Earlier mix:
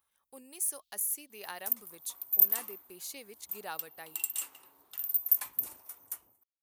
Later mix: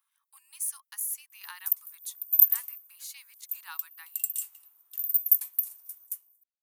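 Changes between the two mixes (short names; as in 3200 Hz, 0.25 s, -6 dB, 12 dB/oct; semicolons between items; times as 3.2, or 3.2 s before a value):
speech: add steep high-pass 930 Hz 72 dB/oct; first sound: muted; second sound: add differentiator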